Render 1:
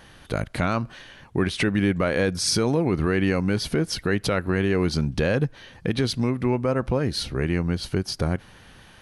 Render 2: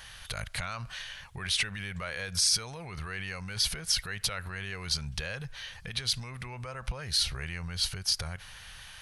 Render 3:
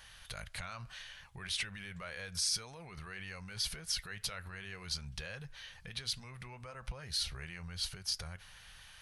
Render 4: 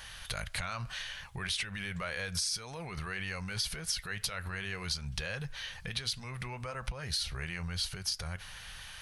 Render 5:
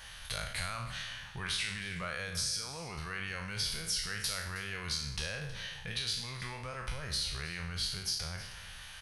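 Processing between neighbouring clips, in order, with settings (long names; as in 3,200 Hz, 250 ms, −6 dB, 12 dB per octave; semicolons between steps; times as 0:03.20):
brickwall limiter −22.5 dBFS, peak gain reduction 11 dB; guitar amp tone stack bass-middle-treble 10-0-10; level +7.5 dB
flanger 1.8 Hz, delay 3.3 ms, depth 2.9 ms, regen −74%; level −3.5 dB
downward compressor 5 to 1, threshold −40 dBFS, peak gain reduction 9.5 dB; level +8.5 dB
peak hold with a decay on every bin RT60 0.73 s; single-tap delay 317 ms −16.5 dB; level −3.5 dB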